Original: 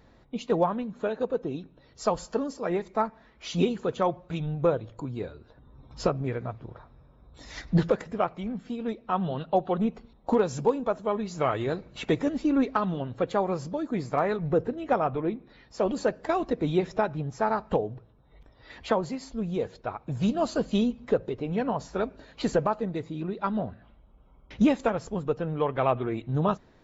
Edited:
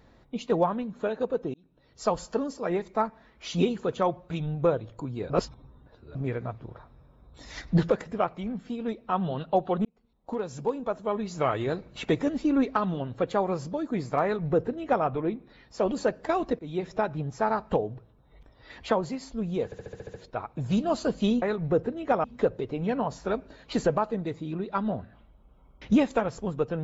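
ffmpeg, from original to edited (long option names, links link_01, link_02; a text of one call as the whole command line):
ffmpeg -i in.wav -filter_complex "[0:a]asplit=15[link_01][link_02][link_03][link_04][link_05][link_06][link_07][link_08][link_09][link_10][link_11][link_12][link_13][link_14][link_15];[link_01]atrim=end=1.54,asetpts=PTS-STARTPTS,afade=type=out:start_time=1.536:duration=0.004:curve=hsin[link_16];[link_02]atrim=start=1.54:end=5.302,asetpts=PTS-STARTPTS,afade=type=in:duration=0.56[link_17];[link_03]atrim=start=5.298:end=6.152,asetpts=PTS-STARTPTS,areverse[link_18];[link_04]atrim=start=6.148:end=9.85,asetpts=PTS-STARTPTS,afade=type=out:start_time=3.698:duration=0.004:curve=hsin[link_19];[link_05]atrim=start=9.85:end=16.59,asetpts=PTS-STARTPTS,afade=type=in:duration=1.42,afade=type=out:start_time=6.736:duration=0.004:curve=hsin:silence=0.11885[link_20];[link_06]atrim=start=16.59:end=19.722,asetpts=PTS-STARTPTS,afade=type=in:duration=0.66:curve=qsin:silence=0.11885[link_21];[link_07]atrim=start=19.648:end=19.722[link_22];[link_08]atrim=start=19.648:end=19.722[link_23];[link_09]atrim=start=19.648:end=19.722[link_24];[link_10]atrim=start=19.648:end=19.722[link_25];[link_11]atrim=start=19.648:end=19.722[link_26];[link_12]atrim=start=19.648:end=19.722[link_27];[link_13]atrim=start=19.648:end=20.932[link_28];[link_14]atrim=start=14.228:end=15.052[link_29];[link_15]atrim=start=20.928[link_30];[link_16][link_17]concat=n=2:v=0:a=1[link_31];[link_31][link_18]acrossfade=duration=0.004:curve1=hsin:curve2=hsin[link_32];[link_19][link_20][link_21]concat=n=3:v=0:a=1[link_33];[link_32][link_33]acrossfade=duration=0.004:curve1=hsin:curve2=hsin[link_34];[link_34][link_22]acrossfade=duration=0.004:curve1=hsin:curve2=hsin[link_35];[link_35][link_23]acrossfade=duration=0.004:curve1=hsin:curve2=hsin[link_36];[link_36][link_24]acrossfade=duration=0.004:curve1=hsin:curve2=hsin[link_37];[link_37][link_25]acrossfade=duration=0.004:curve1=hsin:curve2=hsin[link_38];[link_38][link_26]acrossfade=duration=0.004:curve1=hsin:curve2=hsin[link_39];[link_39][link_27]acrossfade=duration=0.004:curve1=hsin:curve2=hsin[link_40];[link_40][link_28]acrossfade=duration=0.004:curve1=hsin:curve2=hsin[link_41];[link_41][link_29]acrossfade=duration=0.004:curve1=hsin:curve2=hsin[link_42];[link_42][link_30]acrossfade=duration=0.004:curve1=hsin:curve2=hsin" out.wav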